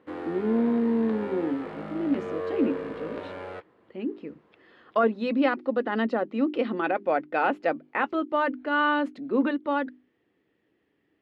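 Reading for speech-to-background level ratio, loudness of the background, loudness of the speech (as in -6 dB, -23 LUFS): 9.0 dB, -36.0 LUFS, -27.0 LUFS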